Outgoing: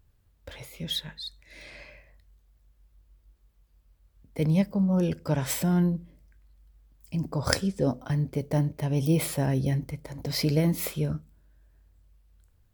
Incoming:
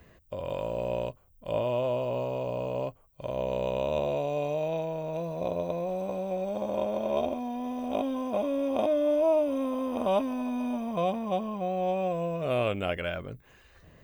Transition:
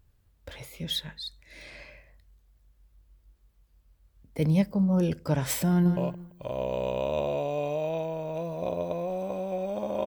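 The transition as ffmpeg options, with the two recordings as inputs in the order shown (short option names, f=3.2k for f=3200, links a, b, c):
-filter_complex "[0:a]apad=whole_dur=10.06,atrim=end=10.06,atrim=end=5.972[a];[1:a]atrim=start=2.758:end=6.85[b];[a][b]acrossfade=d=0.004:c1=hsin:c2=hsin,asplit=2[c][d];[d]afade=t=in:st=5.68:d=0.01,afade=t=out:st=5.97:d=0.01,aecho=0:1:170|340|510:0.398107|0.0995268|0.0248817[e];[c][e]amix=inputs=2:normalize=0"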